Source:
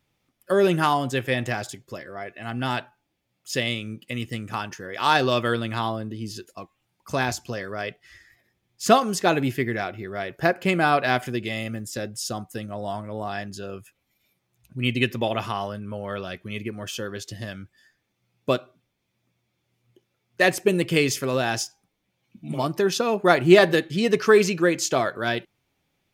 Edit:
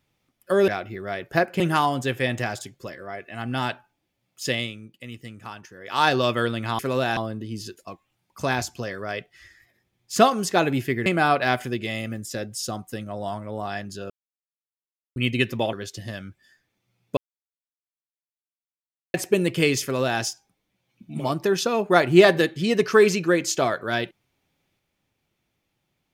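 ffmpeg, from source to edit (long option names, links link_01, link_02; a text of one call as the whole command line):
ffmpeg -i in.wav -filter_complex "[0:a]asplit=13[link_01][link_02][link_03][link_04][link_05][link_06][link_07][link_08][link_09][link_10][link_11][link_12][link_13];[link_01]atrim=end=0.682[link_14];[link_02]atrim=start=9.758:end=10.682[link_15];[link_03]atrim=start=0.678:end=3.89,asetpts=PTS-STARTPTS,afade=type=out:start_time=2.942:duration=0.27:silence=0.375837[link_16];[link_04]atrim=start=3.89:end=4.86,asetpts=PTS-STARTPTS,volume=-8.5dB[link_17];[link_05]atrim=start=4.86:end=5.872,asetpts=PTS-STARTPTS,afade=type=in:duration=0.27:silence=0.375837[link_18];[link_06]atrim=start=21.168:end=21.552[link_19];[link_07]atrim=start=5.868:end=9.762[link_20];[link_08]atrim=start=10.678:end=13.72,asetpts=PTS-STARTPTS,afade=type=out:start_time=3.038:duration=0.004:curve=hsin[link_21];[link_09]atrim=start=13.72:end=14.78,asetpts=PTS-STARTPTS,volume=0[link_22];[link_10]atrim=start=14.78:end=15.352,asetpts=PTS-STARTPTS,afade=type=in:duration=0.004:curve=hsin[link_23];[link_11]atrim=start=17.068:end=18.51,asetpts=PTS-STARTPTS,afade=type=out:start_time=1.438:duration=0.004:curve=hsin[link_24];[link_12]atrim=start=18.51:end=20.48,asetpts=PTS-STARTPTS,volume=0[link_25];[link_13]atrim=start=20.48,asetpts=PTS-STARTPTS,afade=type=in:duration=0.004:curve=hsin[link_26];[link_14][link_15]acrossfade=duration=0.004:curve1=hsin:curve2=hsin[link_27];[link_16][link_17][link_18]concat=n=3:v=0:a=1[link_28];[link_27][link_28]acrossfade=duration=0.004:curve1=hsin:curve2=hsin[link_29];[link_29][link_19]acrossfade=duration=0.004:curve1=hsin:curve2=hsin[link_30];[link_30][link_20]acrossfade=duration=0.004:curve1=hsin:curve2=hsin[link_31];[link_21][link_22][link_23]concat=n=3:v=0:a=1[link_32];[link_31][link_32]acrossfade=duration=0.004:curve1=hsin:curve2=hsin[link_33];[link_24][link_25][link_26]concat=n=3:v=0:a=1[link_34];[link_33][link_34]acrossfade=duration=0.004:curve1=hsin:curve2=hsin" out.wav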